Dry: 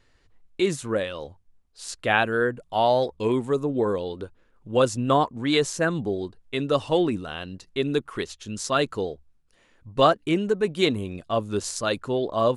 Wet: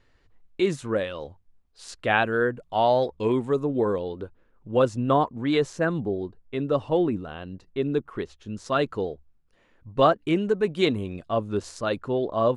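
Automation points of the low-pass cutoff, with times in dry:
low-pass 6 dB/octave
3.3 kHz
from 3.98 s 1.7 kHz
from 6.00 s 1 kHz
from 8.66 s 2 kHz
from 10.21 s 3.5 kHz
from 11.30 s 1.8 kHz

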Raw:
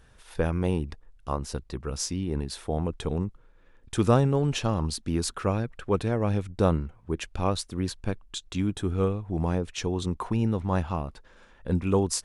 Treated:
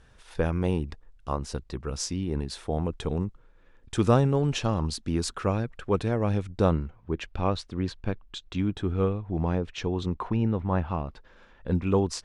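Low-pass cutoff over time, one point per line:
6.48 s 8.4 kHz
7.11 s 4 kHz
10.06 s 4 kHz
10.82 s 2.3 kHz
11.07 s 4.9 kHz

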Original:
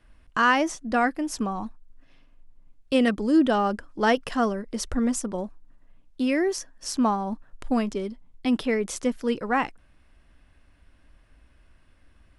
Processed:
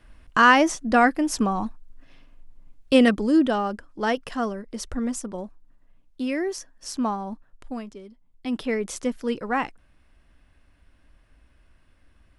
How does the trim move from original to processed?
2.99 s +5 dB
3.69 s -3 dB
7.25 s -3 dB
8.04 s -13 dB
8.71 s -1 dB

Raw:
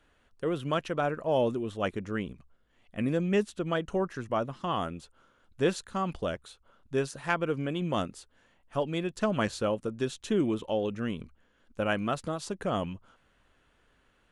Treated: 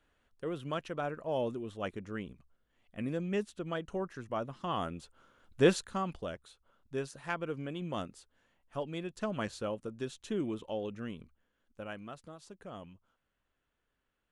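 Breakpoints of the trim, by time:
4.26 s -7 dB
5.71 s +2.5 dB
6.20 s -7.5 dB
10.96 s -7.5 dB
12.15 s -16 dB

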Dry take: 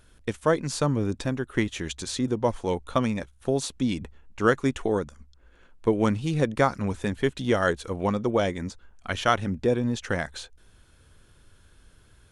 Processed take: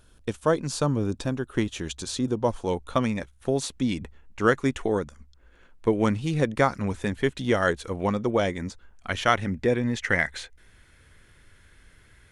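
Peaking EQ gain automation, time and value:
peaking EQ 2 kHz 0.43 oct
2.57 s -6 dB
3.06 s +3 dB
9.11 s +3 dB
9.89 s +15 dB

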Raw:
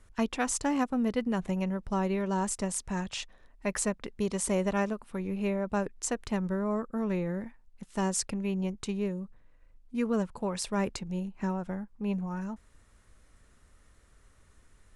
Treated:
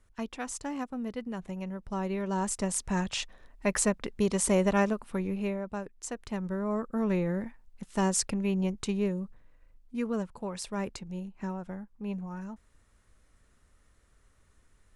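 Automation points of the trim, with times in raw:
1.53 s -7 dB
2.94 s +3.5 dB
5.16 s +3.5 dB
5.86 s -8 dB
7.05 s +2.5 dB
9.24 s +2.5 dB
10.32 s -4 dB

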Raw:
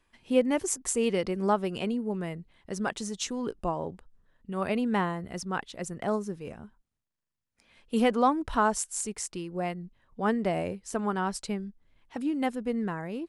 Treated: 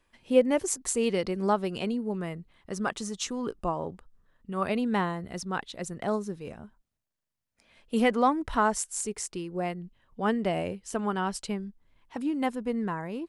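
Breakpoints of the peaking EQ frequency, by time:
peaking EQ +5.5 dB 0.27 oct
550 Hz
from 0.68 s 4.2 kHz
from 2.18 s 1.2 kHz
from 4.67 s 3.9 kHz
from 6.57 s 630 Hz
from 8.01 s 2 kHz
from 8.80 s 410 Hz
from 9.82 s 3 kHz
from 11.51 s 1 kHz

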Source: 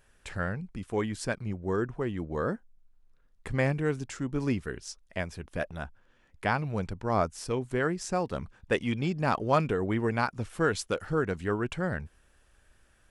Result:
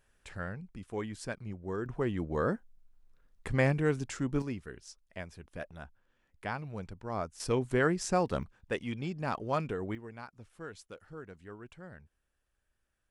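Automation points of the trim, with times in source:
-7 dB
from 1.86 s 0 dB
from 4.42 s -9 dB
from 7.40 s +1 dB
from 8.43 s -7 dB
from 9.95 s -18 dB

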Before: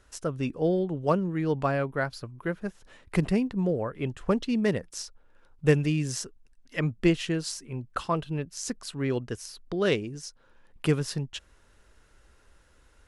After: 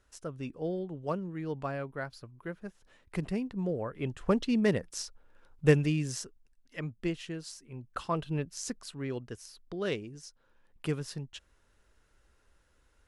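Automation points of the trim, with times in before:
3.20 s -9 dB
4.41 s -1 dB
5.69 s -1 dB
6.92 s -10.5 dB
7.61 s -10.5 dB
8.37 s -1 dB
9.08 s -8 dB

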